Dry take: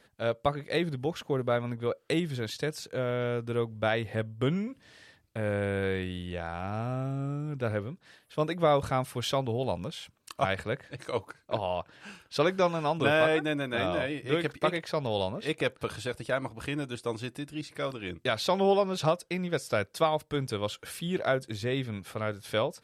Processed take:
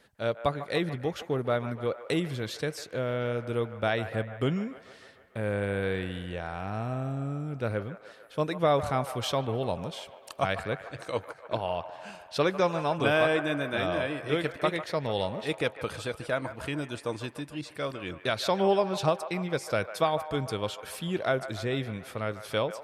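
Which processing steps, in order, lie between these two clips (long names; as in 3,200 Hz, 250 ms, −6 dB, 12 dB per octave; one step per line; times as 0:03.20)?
delay with a band-pass on its return 148 ms, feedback 66%, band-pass 1,100 Hz, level −11 dB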